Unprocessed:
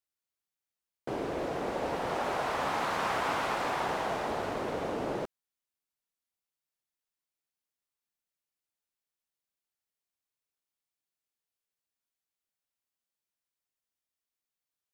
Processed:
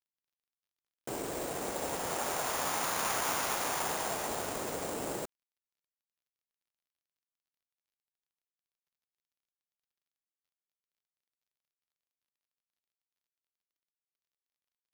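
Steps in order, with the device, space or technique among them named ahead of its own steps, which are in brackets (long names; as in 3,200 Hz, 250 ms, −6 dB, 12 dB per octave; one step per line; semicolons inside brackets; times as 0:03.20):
early companding sampler (sample-rate reduction 8,100 Hz, jitter 0%; log-companded quantiser 8 bits)
high-shelf EQ 3,100 Hz +11 dB
level −4.5 dB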